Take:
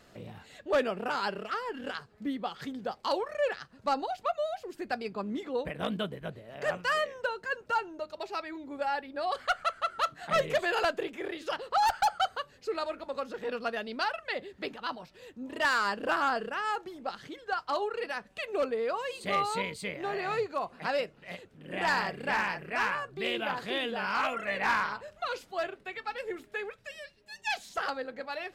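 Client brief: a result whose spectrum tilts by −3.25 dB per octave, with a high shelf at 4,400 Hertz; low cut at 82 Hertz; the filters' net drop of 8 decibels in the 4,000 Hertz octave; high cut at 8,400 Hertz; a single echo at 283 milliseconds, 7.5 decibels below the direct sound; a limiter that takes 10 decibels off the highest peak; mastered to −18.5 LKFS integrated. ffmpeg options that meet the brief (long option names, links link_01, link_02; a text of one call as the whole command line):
ffmpeg -i in.wav -af "highpass=82,lowpass=8400,equalizer=frequency=4000:width_type=o:gain=-7,highshelf=frequency=4400:gain=-8,alimiter=level_in=4.5dB:limit=-24dB:level=0:latency=1,volume=-4.5dB,aecho=1:1:283:0.422,volume=19.5dB" out.wav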